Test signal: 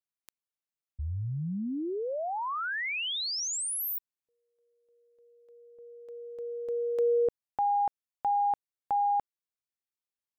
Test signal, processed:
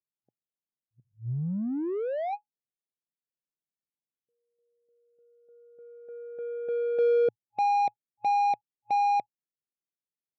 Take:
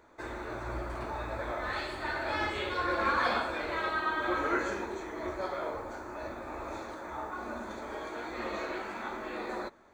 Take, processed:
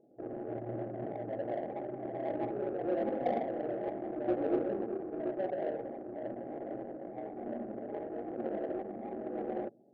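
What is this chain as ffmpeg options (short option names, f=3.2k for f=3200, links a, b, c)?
-af "afftfilt=real='re*between(b*sr/4096,110,830)':imag='im*between(b*sr/4096,110,830)':win_size=4096:overlap=0.75,adynamicsmooth=sensitivity=3:basefreq=520,volume=3dB"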